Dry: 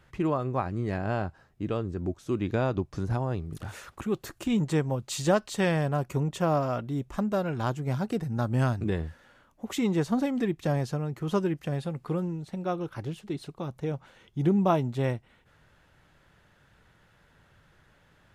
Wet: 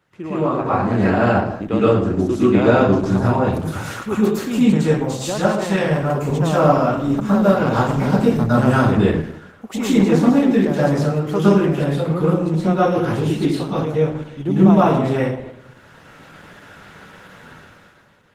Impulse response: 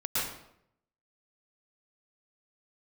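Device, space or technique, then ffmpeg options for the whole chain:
far-field microphone of a smart speaker: -filter_complex "[1:a]atrim=start_sample=2205[link_01];[0:a][link_01]afir=irnorm=-1:irlink=0,highpass=150,dynaudnorm=framelen=110:gausssize=13:maxgain=16dB,volume=-1dB" -ar 48000 -c:a libopus -b:a 16k

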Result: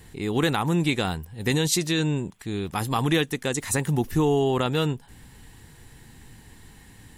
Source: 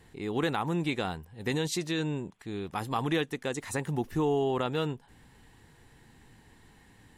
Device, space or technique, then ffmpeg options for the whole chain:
smiley-face EQ: -af "lowshelf=frequency=140:gain=4.5,equalizer=frequency=680:width_type=o:width=2.5:gain=-3,highshelf=frequency=6700:gain=9,volume=7dB"

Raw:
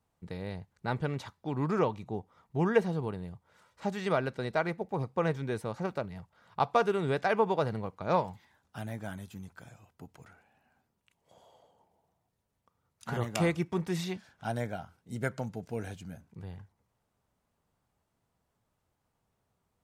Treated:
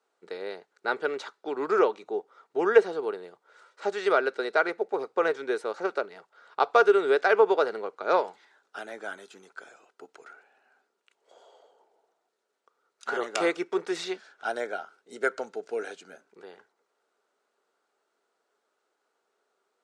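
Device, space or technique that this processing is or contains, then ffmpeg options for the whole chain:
phone speaker on a table: -af "highpass=frequency=350:width=0.5412,highpass=frequency=350:width=1.3066,equalizer=frequency=410:width_type=q:width=4:gain=8,equalizer=frequency=990:width_type=q:width=4:gain=-3,equalizer=frequency=1400:width_type=q:width=4:gain=9,equalizer=frequency=4100:width_type=q:width=4:gain=3,lowpass=frequency=8700:width=0.5412,lowpass=frequency=8700:width=1.3066,volume=3.5dB"

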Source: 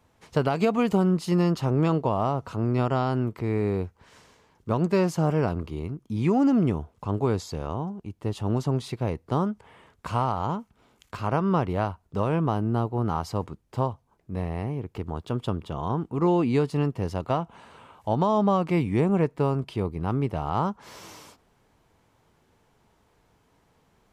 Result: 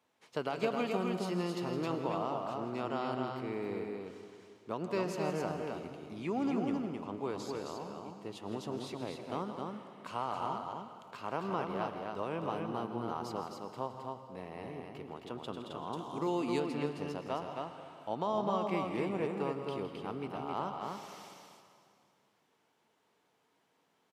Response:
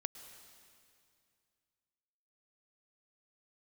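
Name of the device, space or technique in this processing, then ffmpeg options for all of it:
stadium PA: -filter_complex "[0:a]highpass=250,equalizer=frequency=3100:width_type=o:width=1.4:gain=4,aecho=1:1:163.3|265.3:0.251|0.631[link_01];[1:a]atrim=start_sample=2205[link_02];[link_01][link_02]afir=irnorm=-1:irlink=0,asettb=1/sr,asplit=3[link_03][link_04][link_05];[link_03]atrim=end=15.934[link_06];[link_04]atrim=start=15.93:end=16.6,asetpts=PTS-STARTPTS,afade=type=in:duration=0.004:curve=qsin,afade=type=out:start_time=0.666:duration=0.004:curve=qsin,bass=frequency=250:gain=1,treble=frequency=4000:gain=12[link_07];[link_05]atrim=start=16.596[link_08];[link_06][link_07]acrossfade=duration=0.004:curve1=hsin:curve2=qsin[link_09];[link_09][link_08]acrossfade=duration=0.004:curve1=qsin:curve2=hsin,volume=-8.5dB"

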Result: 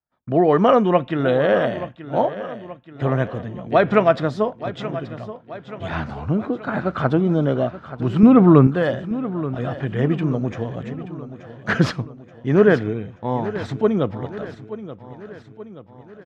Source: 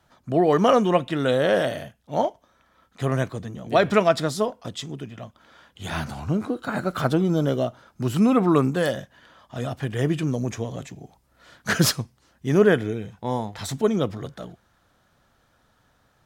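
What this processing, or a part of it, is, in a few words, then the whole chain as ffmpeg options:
hearing-loss simulation: -filter_complex "[0:a]lowpass=2400,agate=range=-33dB:threshold=-44dB:ratio=3:detection=peak,asettb=1/sr,asplit=3[link_01][link_02][link_03];[link_01]atrim=end=8.234[link_04];[link_02]atrim=start=8.23:end=8.67,asetpts=PTS-STARTPTS,afade=type=in:duration=0.004:curve=qsin,afade=type=out:start_time=0.436:duration=0.004:curve=qsin,lowshelf=frequency=230:gain=11.5[link_05];[link_03]atrim=start=8.666[link_06];[link_04][link_05]acrossfade=duration=0.004:curve1=hsin:curve2=qsin[link_07];[link_07][link_06]acrossfade=duration=0.004:curve1=qsin:curve2=hsin,aecho=1:1:879|1758|2637|3516|4395:0.2|0.108|0.0582|0.0314|0.017,volume=3dB"

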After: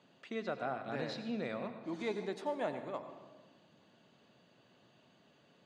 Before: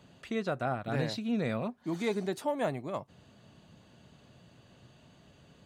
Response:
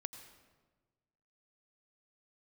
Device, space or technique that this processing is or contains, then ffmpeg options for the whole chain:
supermarket ceiling speaker: -filter_complex "[0:a]highpass=230,lowpass=5500[link_01];[1:a]atrim=start_sample=2205[link_02];[link_01][link_02]afir=irnorm=-1:irlink=0,volume=-2dB"

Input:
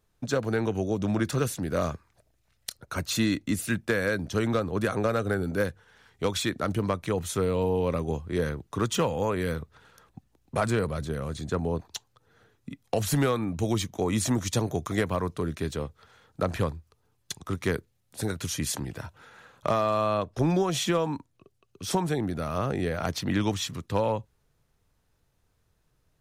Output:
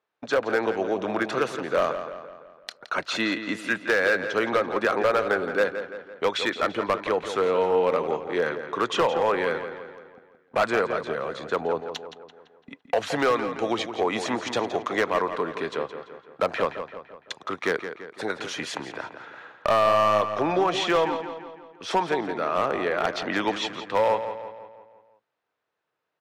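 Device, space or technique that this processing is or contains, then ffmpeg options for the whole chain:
walkie-talkie: -filter_complex "[0:a]highpass=510,lowpass=2800,asoftclip=type=hard:threshold=-24dB,agate=range=-10dB:threshold=-56dB:ratio=16:detection=peak,asplit=2[link_01][link_02];[link_02]adelay=169,lowpass=frequency=4500:poles=1,volume=-9.5dB,asplit=2[link_03][link_04];[link_04]adelay=169,lowpass=frequency=4500:poles=1,volume=0.52,asplit=2[link_05][link_06];[link_06]adelay=169,lowpass=frequency=4500:poles=1,volume=0.52,asplit=2[link_07][link_08];[link_08]adelay=169,lowpass=frequency=4500:poles=1,volume=0.52,asplit=2[link_09][link_10];[link_10]adelay=169,lowpass=frequency=4500:poles=1,volume=0.52,asplit=2[link_11][link_12];[link_12]adelay=169,lowpass=frequency=4500:poles=1,volume=0.52[link_13];[link_01][link_03][link_05][link_07][link_09][link_11][link_13]amix=inputs=7:normalize=0,volume=8.5dB"

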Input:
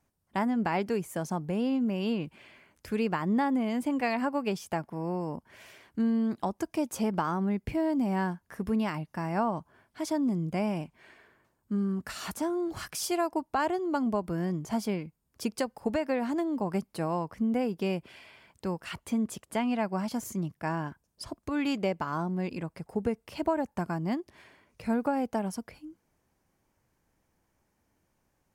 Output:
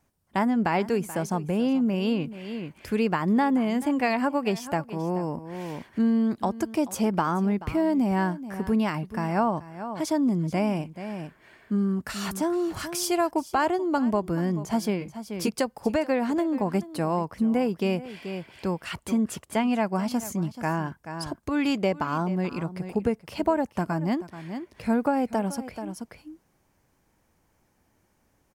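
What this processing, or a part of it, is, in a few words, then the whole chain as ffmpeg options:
ducked delay: -filter_complex "[0:a]asplit=3[link_01][link_02][link_03];[link_01]afade=type=out:start_time=15:duration=0.02[link_04];[link_02]asplit=2[link_05][link_06];[link_06]adelay=15,volume=-2dB[link_07];[link_05][link_07]amix=inputs=2:normalize=0,afade=type=in:start_time=15:duration=0.02,afade=type=out:start_time=15.49:duration=0.02[link_08];[link_03]afade=type=in:start_time=15.49:duration=0.02[link_09];[link_04][link_08][link_09]amix=inputs=3:normalize=0,asplit=3[link_10][link_11][link_12];[link_11]adelay=432,volume=-3dB[link_13];[link_12]apad=whole_len=1277704[link_14];[link_13][link_14]sidechaincompress=threshold=-41dB:ratio=8:attack=22:release=581[link_15];[link_10][link_15]amix=inputs=2:normalize=0,volume=4.5dB"

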